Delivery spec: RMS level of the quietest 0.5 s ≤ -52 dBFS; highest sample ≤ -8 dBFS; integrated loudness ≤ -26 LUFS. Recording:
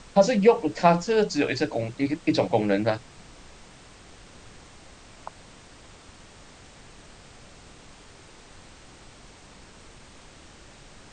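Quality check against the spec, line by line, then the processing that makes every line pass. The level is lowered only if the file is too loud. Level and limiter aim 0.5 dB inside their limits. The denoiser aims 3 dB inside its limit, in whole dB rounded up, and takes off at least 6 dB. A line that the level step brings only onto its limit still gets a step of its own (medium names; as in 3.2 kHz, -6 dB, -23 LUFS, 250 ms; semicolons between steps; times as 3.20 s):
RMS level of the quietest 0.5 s -49 dBFS: fail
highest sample -6.0 dBFS: fail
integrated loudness -23.0 LUFS: fail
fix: trim -3.5 dB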